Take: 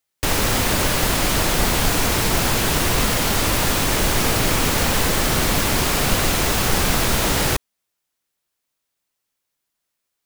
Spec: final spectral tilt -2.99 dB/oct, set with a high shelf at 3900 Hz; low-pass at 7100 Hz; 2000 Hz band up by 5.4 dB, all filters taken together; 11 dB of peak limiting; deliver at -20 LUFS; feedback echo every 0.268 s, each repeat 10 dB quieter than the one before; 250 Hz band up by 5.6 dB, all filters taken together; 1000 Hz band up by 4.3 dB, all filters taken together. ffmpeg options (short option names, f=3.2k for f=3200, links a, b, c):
-af "lowpass=7.1k,equalizer=f=250:t=o:g=7,equalizer=f=1k:t=o:g=3.5,equalizer=f=2k:t=o:g=4,highshelf=f=3.9k:g=6.5,alimiter=limit=-13.5dB:level=0:latency=1,aecho=1:1:268|536|804|1072:0.316|0.101|0.0324|0.0104,volume=1.5dB"